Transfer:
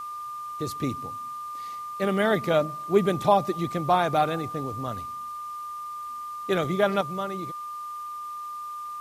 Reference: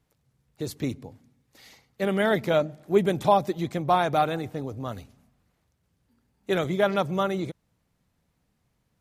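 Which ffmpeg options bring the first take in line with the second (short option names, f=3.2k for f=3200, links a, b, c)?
-af "bandreject=f=1.2k:w=30,agate=range=-21dB:threshold=-28dB,asetnsamples=n=441:p=0,asendcmd='7.01 volume volume 6.5dB',volume=0dB"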